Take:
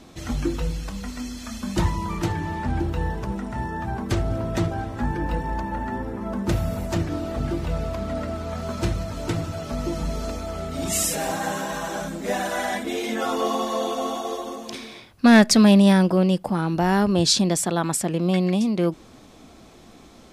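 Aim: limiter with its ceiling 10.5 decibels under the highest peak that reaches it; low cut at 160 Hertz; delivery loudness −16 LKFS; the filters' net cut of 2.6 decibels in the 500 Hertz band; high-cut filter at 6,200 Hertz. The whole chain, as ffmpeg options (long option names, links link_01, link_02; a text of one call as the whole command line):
ffmpeg -i in.wav -af "highpass=160,lowpass=6200,equalizer=frequency=500:width_type=o:gain=-3.5,volume=12dB,alimiter=limit=-1.5dB:level=0:latency=1" out.wav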